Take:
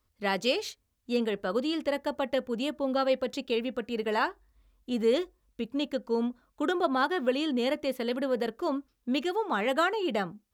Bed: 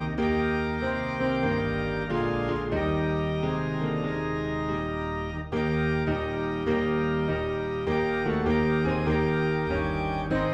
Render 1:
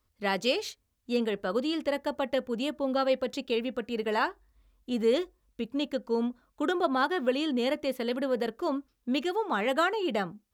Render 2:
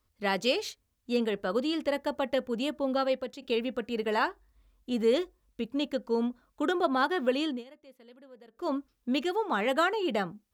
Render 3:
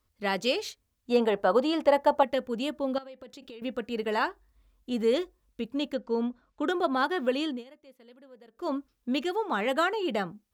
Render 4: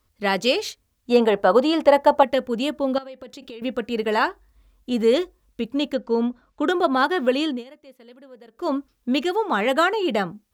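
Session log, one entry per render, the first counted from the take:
no audible change
2.79–3.42 s: fade out equal-power, to -12 dB; 7.45–8.71 s: dip -23.5 dB, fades 0.19 s
1.10–2.23 s: peaking EQ 810 Hz +13 dB 1.3 oct; 2.98–3.62 s: compression 12:1, threshold -41 dBFS; 5.94–6.68 s: distance through air 80 m
trim +7 dB

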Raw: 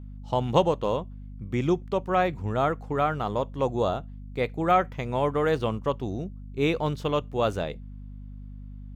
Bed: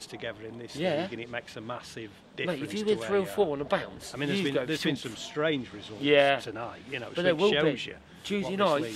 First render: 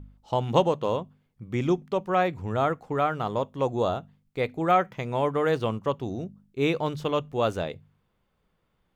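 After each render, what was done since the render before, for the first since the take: de-hum 50 Hz, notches 5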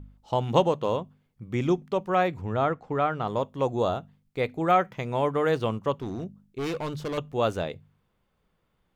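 2.41–3.28 s: distance through air 92 m; 5.98–7.18 s: hard clipper -27.5 dBFS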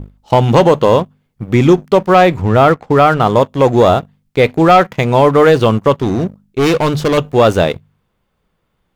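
waveshaping leveller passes 2; loudness maximiser +10.5 dB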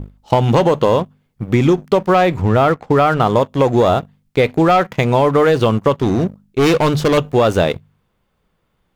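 compression, threshold -9 dBFS, peak gain reduction 5.5 dB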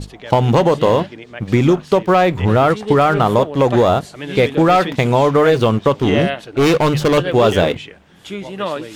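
add bed +2.5 dB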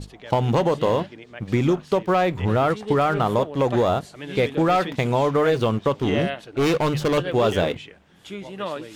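trim -7 dB

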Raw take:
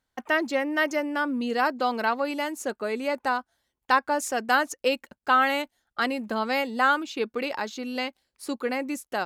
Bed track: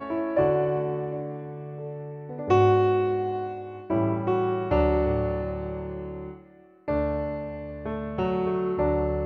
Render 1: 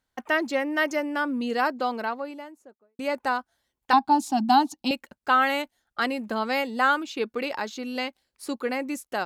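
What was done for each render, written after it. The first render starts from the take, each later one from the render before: 1.53–2.99 s: studio fade out; 3.93–4.91 s: FFT filter 120 Hz 0 dB, 210 Hz +13 dB, 310 Hz +8 dB, 470 Hz -26 dB, 810 Hz +11 dB, 1.2 kHz -6 dB, 1.8 kHz -15 dB, 4 kHz +6 dB, 6.2 kHz -6 dB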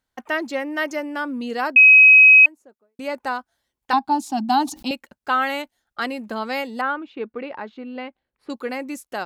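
1.76–2.46 s: bleep 2.54 kHz -6 dBFS; 4.27–4.93 s: decay stretcher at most 130 dB/s; 6.81–8.50 s: distance through air 490 m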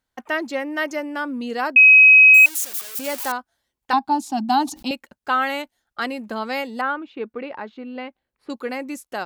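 2.34–3.32 s: zero-crossing glitches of -18.5 dBFS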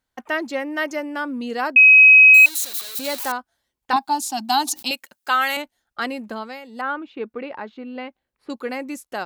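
1.98–3.19 s: peaking EQ 4 kHz +15 dB 0.21 oct; 3.96–5.57 s: tilt EQ +3.5 dB/octave; 6.24–6.97 s: dip -13.5 dB, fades 0.36 s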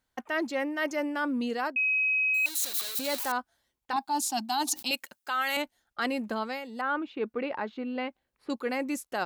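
peak limiter -12 dBFS, peak gain reduction 6.5 dB; reverse; compression 6:1, threshold -26 dBFS, peak gain reduction 11 dB; reverse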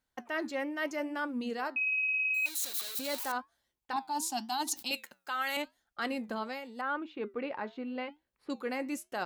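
flange 0.85 Hz, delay 4.5 ms, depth 4.2 ms, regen -83%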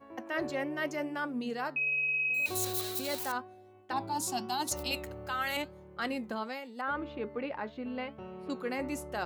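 add bed track -19 dB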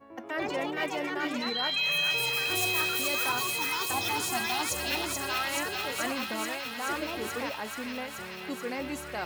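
ever faster or slower copies 155 ms, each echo +4 st, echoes 2; feedback echo behind a high-pass 431 ms, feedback 80%, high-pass 1.6 kHz, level -3 dB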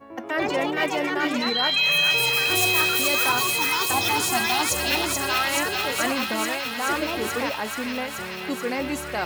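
trim +7.5 dB

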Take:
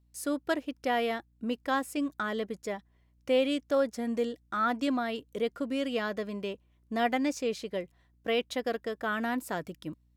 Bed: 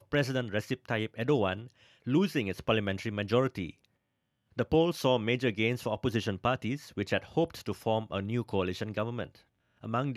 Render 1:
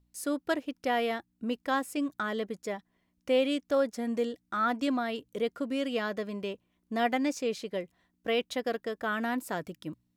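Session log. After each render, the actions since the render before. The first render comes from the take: de-hum 60 Hz, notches 2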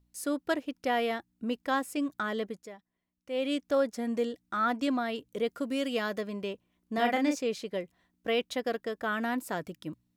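2.46–3.54 s: dip -11.5 dB, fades 0.24 s; 5.48–6.21 s: treble shelf 5.7 kHz +7.5 dB; 6.94–7.36 s: doubling 37 ms -4.5 dB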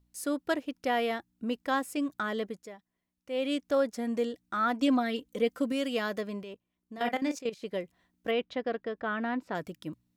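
4.80–5.72 s: comb 3.9 ms, depth 68%; 6.43–7.63 s: level held to a coarse grid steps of 14 dB; 8.31–9.55 s: distance through air 230 m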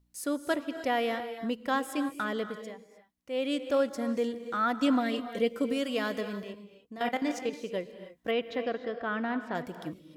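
gated-style reverb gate 330 ms rising, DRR 10 dB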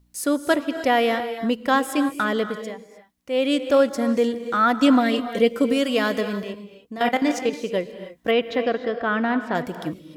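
trim +9.5 dB

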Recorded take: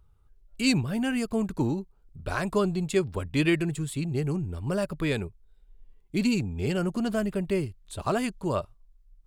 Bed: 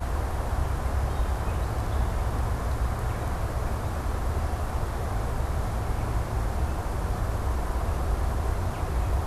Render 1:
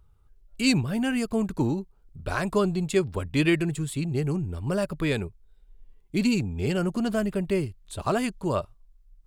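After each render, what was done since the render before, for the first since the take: trim +1.5 dB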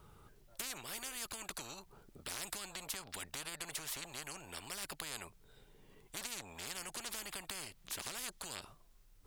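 compression, threshold -29 dBFS, peak gain reduction 12 dB; spectrum-flattening compressor 10:1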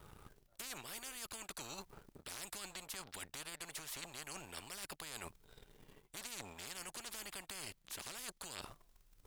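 waveshaping leveller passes 2; reverse; compression 5:1, threshold -45 dBFS, peak gain reduction 14 dB; reverse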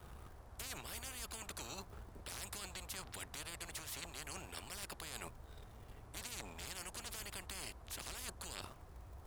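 add bed -28 dB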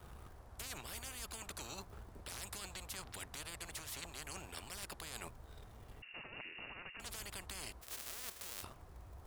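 6.02–7.00 s: frequency inversion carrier 2.8 kHz; 7.81–8.62 s: formants flattened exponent 0.1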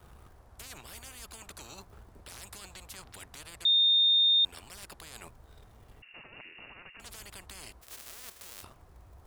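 3.65–4.45 s: bleep 3.65 kHz -20 dBFS

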